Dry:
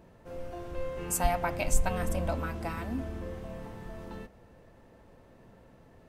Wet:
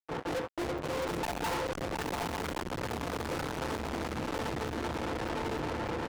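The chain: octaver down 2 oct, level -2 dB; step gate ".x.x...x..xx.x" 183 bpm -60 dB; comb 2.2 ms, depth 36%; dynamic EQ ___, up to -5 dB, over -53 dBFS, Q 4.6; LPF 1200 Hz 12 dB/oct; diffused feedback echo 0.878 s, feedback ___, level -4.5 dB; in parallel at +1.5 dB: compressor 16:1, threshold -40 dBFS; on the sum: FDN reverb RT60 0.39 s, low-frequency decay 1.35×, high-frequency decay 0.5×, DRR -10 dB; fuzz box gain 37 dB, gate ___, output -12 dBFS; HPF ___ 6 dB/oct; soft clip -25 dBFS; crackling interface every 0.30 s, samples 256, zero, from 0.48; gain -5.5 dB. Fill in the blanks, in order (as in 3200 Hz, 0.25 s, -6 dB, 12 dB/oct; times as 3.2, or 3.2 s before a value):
600 Hz, 43%, -41 dBFS, 360 Hz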